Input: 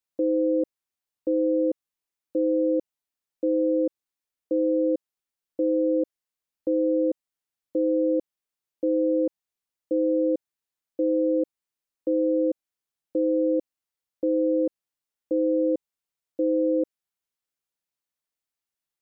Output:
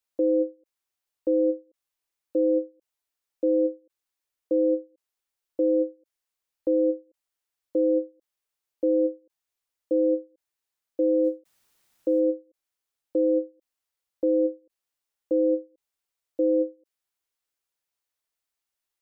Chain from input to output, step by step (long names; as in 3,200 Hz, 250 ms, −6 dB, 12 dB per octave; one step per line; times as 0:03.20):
parametric band 180 Hz −10.5 dB 1 octave
0:11.24–0:12.20: bit-depth reduction 12 bits, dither triangular
every ending faded ahead of time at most 270 dB per second
level +3 dB